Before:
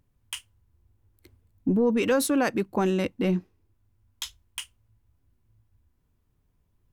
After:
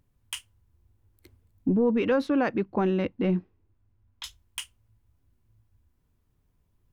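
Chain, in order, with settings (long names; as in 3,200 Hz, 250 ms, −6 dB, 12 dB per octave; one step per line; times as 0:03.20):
0:01.68–0:04.24: high-frequency loss of the air 280 metres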